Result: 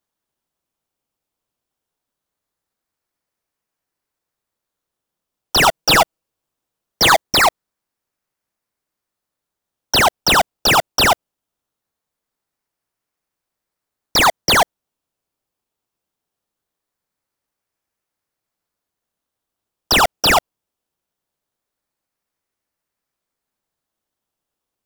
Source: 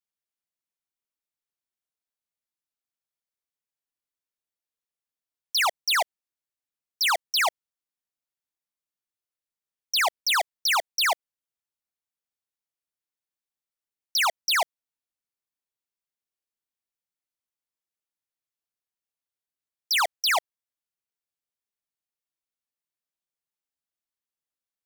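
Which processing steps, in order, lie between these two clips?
5.62–7.22 comb 6.2 ms, depth 55%; in parallel at -4 dB: decimation with a swept rate 16×, swing 60% 0.21 Hz; on the sum: gain +8 dB

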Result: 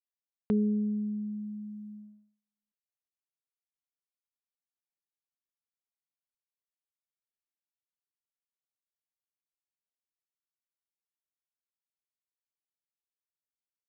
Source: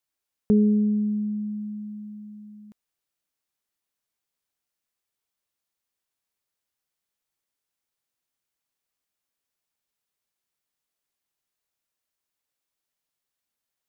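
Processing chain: gate -38 dBFS, range -44 dB; gain -8 dB

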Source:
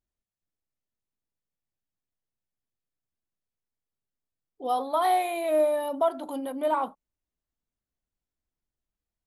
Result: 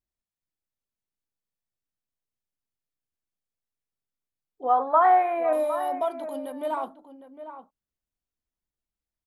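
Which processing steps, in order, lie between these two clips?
4.63–5.53 EQ curve 210 Hz 0 dB, 1600 Hz +14 dB, 4300 Hz -21 dB; outdoor echo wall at 130 m, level -11 dB; dynamic EQ 6000 Hz, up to +7 dB, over -56 dBFS, Q 3.2; gain -3.5 dB

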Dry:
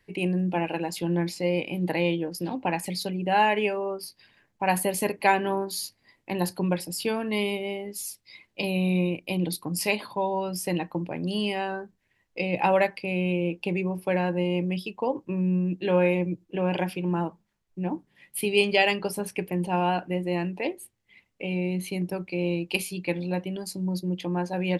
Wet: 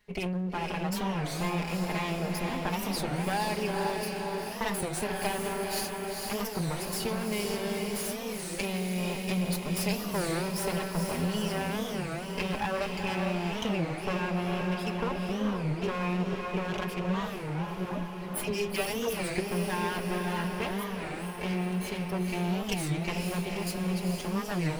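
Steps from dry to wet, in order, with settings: minimum comb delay 4.8 ms; compressor 5:1, threshold -29 dBFS, peak gain reduction 11.5 dB; 17.85–19.36 dispersion lows, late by 74 ms, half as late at 510 Hz; diffused feedback echo 0.469 s, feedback 65%, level -3 dB; record warp 33 1/3 rpm, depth 250 cents

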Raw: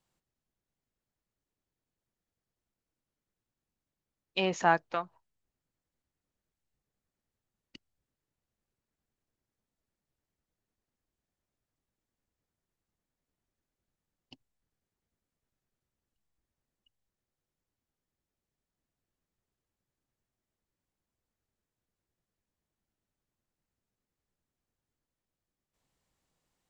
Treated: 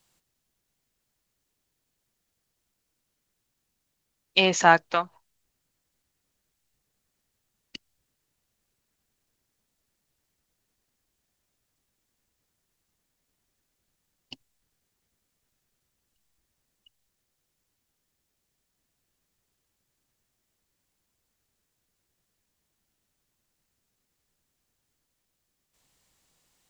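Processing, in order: high shelf 2000 Hz +9 dB; gain +6 dB

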